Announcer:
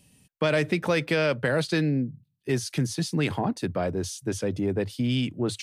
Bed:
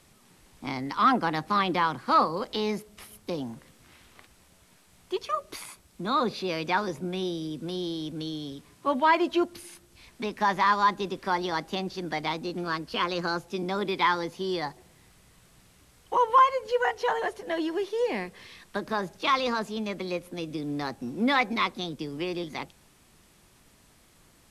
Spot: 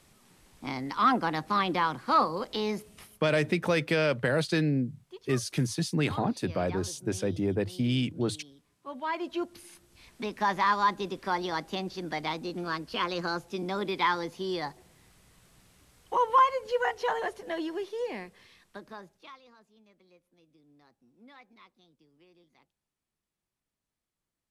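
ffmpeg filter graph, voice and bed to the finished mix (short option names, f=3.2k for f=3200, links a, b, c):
-filter_complex "[0:a]adelay=2800,volume=-2dB[a];[1:a]volume=11.5dB,afade=t=out:st=2.92:d=0.37:silence=0.199526,afade=t=in:st=8.85:d=1.21:silence=0.211349,afade=t=out:st=17.2:d=2.19:silence=0.0421697[b];[a][b]amix=inputs=2:normalize=0"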